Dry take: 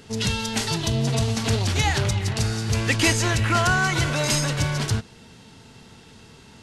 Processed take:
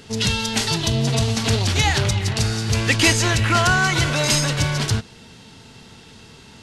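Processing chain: bell 3800 Hz +3 dB 1.6 oct; gain +2.5 dB

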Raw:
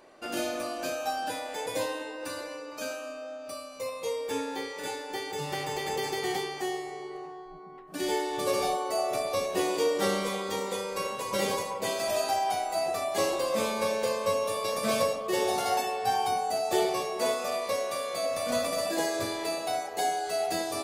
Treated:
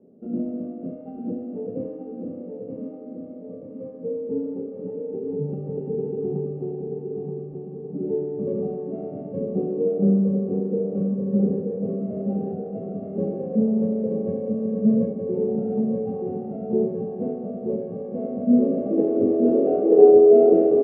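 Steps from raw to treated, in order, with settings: sample sorter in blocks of 16 samples; low shelf 160 Hz +11.5 dB; notch 1600 Hz, Q 15; feedback echo 0.928 s, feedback 54%, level -5 dB; low-pass sweep 180 Hz -> 370 Hz, 17.92–19.96; three-band isolator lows -15 dB, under 390 Hz, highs -15 dB, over 2700 Hz; notch comb 1000 Hz; small resonant body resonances 230/420/3000 Hz, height 18 dB, ringing for 35 ms; gain +6 dB

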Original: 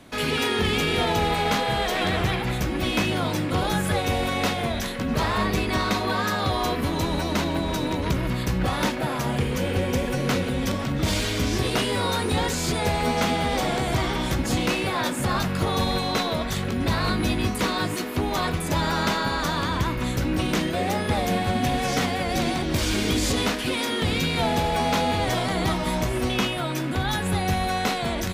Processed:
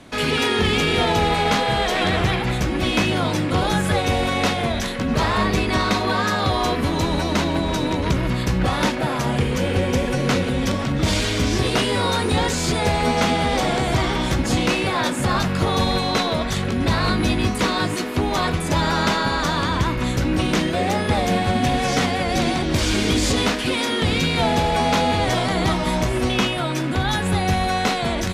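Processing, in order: LPF 10000 Hz 12 dB/oct; gain +4 dB

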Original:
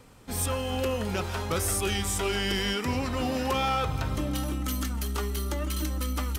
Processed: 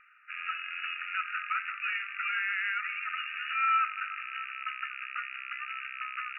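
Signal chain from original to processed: rattling part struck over -33 dBFS, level -28 dBFS; brick-wall FIR band-pass 1200–2900 Hz; tilt -2.5 dB/oct; gain +6 dB

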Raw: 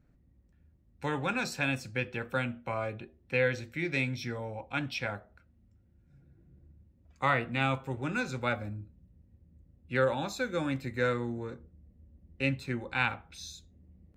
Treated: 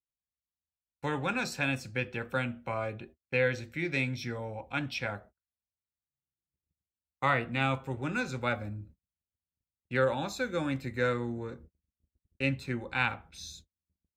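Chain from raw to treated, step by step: gate -51 dBFS, range -42 dB

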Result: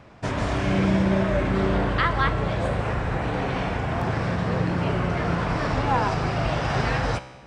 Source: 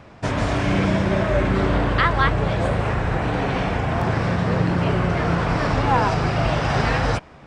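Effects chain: resonator 64 Hz, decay 1.2 s, harmonics all, mix 60%; gain +3 dB

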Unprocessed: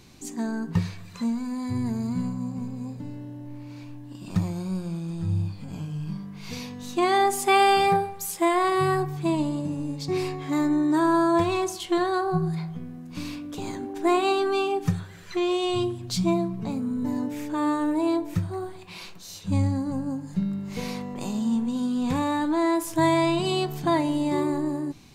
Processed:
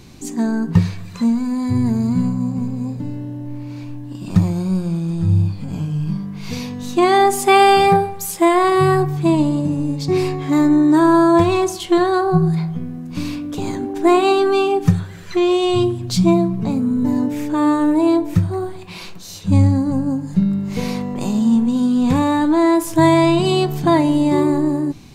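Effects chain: low shelf 480 Hz +5 dB; gain +6 dB

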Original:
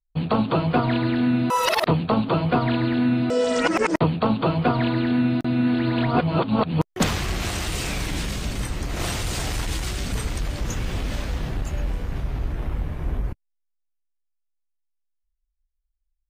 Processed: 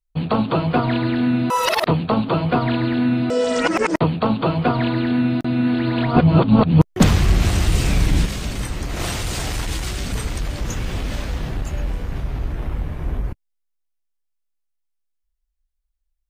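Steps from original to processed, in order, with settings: 6.16–8.26 low shelf 270 Hz +11 dB; gain +2 dB

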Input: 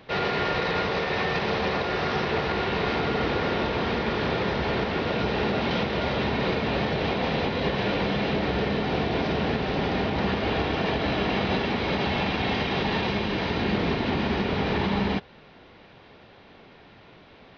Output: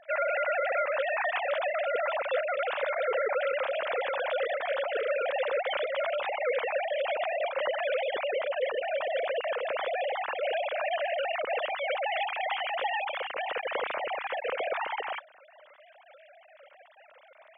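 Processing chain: sine-wave speech; gain -4.5 dB

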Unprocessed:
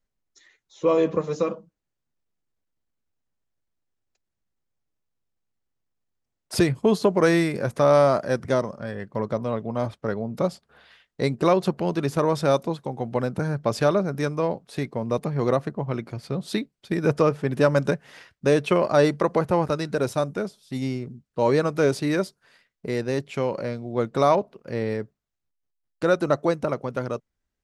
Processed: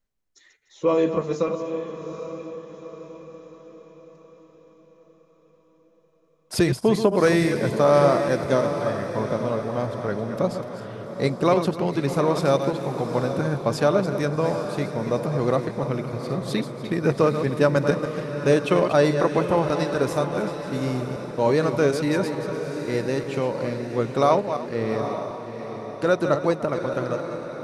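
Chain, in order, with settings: regenerating reverse delay 0.148 s, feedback 41%, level -8.5 dB; diffused feedback echo 0.811 s, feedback 49%, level -9 dB

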